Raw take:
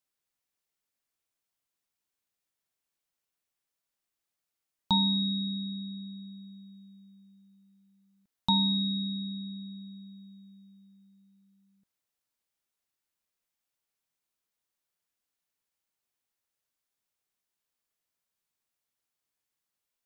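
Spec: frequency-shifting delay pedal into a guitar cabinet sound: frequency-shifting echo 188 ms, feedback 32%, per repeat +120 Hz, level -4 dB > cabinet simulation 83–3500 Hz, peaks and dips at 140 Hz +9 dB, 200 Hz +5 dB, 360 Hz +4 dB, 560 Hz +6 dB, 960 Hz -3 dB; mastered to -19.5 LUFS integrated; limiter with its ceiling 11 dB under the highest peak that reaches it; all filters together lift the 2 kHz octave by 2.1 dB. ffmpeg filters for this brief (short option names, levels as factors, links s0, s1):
-filter_complex "[0:a]equalizer=f=2000:t=o:g=3.5,alimiter=limit=0.0631:level=0:latency=1,asplit=5[s0][s1][s2][s3][s4];[s1]adelay=188,afreqshift=120,volume=0.631[s5];[s2]adelay=376,afreqshift=240,volume=0.202[s6];[s3]adelay=564,afreqshift=360,volume=0.0646[s7];[s4]adelay=752,afreqshift=480,volume=0.0207[s8];[s0][s5][s6][s7][s8]amix=inputs=5:normalize=0,highpass=83,equalizer=f=140:t=q:w=4:g=9,equalizer=f=200:t=q:w=4:g=5,equalizer=f=360:t=q:w=4:g=4,equalizer=f=560:t=q:w=4:g=6,equalizer=f=960:t=q:w=4:g=-3,lowpass=f=3500:w=0.5412,lowpass=f=3500:w=1.3066,volume=3.35"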